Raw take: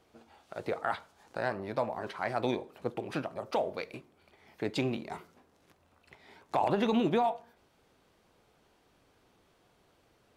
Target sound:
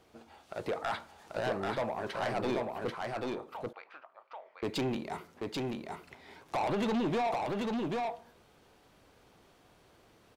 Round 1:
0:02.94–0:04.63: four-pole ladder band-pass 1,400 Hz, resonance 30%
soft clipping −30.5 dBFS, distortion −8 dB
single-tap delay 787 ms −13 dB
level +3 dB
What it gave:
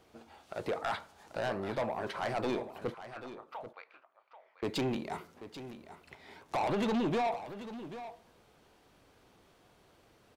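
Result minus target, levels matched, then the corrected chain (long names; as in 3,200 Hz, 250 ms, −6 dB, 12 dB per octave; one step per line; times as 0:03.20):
echo-to-direct −10 dB
0:02.94–0:04.63: four-pole ladder band-pass 1,400 Hz, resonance 30%
soft clipping −30.5 dBFS, distortion −8 dB
single-tap delay 787 ms −3 dB
level +3 dB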